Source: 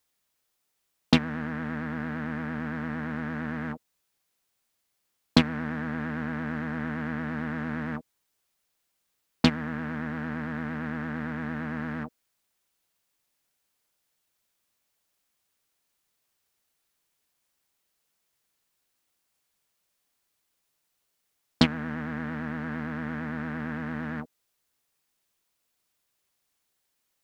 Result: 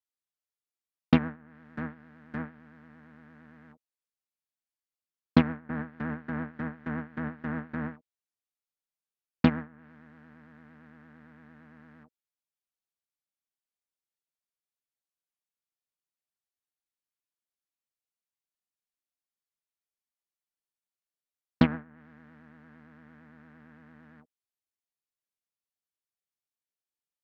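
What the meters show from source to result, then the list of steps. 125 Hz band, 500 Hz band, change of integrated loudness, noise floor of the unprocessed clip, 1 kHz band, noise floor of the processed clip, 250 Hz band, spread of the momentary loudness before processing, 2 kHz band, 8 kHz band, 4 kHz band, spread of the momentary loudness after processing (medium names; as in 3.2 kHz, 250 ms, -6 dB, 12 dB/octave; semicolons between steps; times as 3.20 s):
-2.5 dB, -3.0 dB, 0.0 dB, -78 dBFS, -4.5 dB, under -85 dBFS, -2.5 dB, 9 LU, -7.0 dB, no reading, -12.0 dB, 15 LU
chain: gate with hold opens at -21 dBFS; low-pass that closes with the level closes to 1.8 kHz, closed at -30.5 dBFS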